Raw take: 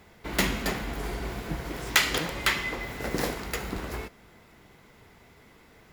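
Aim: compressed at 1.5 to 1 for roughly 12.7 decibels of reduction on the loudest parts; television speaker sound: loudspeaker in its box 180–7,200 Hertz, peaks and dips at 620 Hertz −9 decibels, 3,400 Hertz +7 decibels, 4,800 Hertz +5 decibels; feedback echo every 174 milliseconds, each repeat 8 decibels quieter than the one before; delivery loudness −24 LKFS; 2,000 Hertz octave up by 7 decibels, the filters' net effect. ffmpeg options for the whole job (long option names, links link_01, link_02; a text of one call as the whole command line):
ffmpeg -i in.wav -af "equalizer=frequency=2000:width_type=o:gain=7.5,acompressor=threshold=-49dB:ratio=1.5,highpass=frequency=180:width=0.5412,highpass=frequency=180:width=1.3066,equalizer=frequency=620:width_type=q:width=4:gain=-9,equalizer=frequency=3400:width_type=q:width=4:gain=7,equalizer=frequency=4800:width_type=q:width=4:gain=5,lowpass=frequency=7200:width=0.5412,lowpass=frequency=7200:width=1.3066,aecho=1:1:174|348|522|696|870:0.398|0.159|0.0637|0.0255|0.0102,volume=10dB" out.wav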